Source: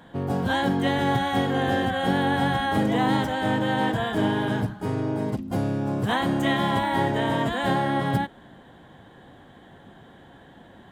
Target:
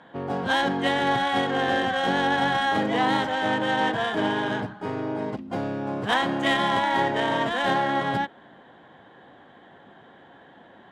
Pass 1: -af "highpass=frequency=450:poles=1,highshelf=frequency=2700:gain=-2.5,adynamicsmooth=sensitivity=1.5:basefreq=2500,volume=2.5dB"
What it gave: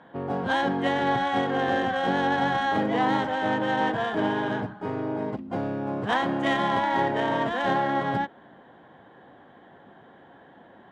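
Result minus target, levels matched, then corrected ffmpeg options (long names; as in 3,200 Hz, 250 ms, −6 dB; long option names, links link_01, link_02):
4,000 Hz band −4.5 dB
-af "highpass=frequency=450:poles=1,highshelf=frequency=2700:gain=7,adynamicsmooth=sensitivity=1.5:basefreq=2500,volume=2.5dB"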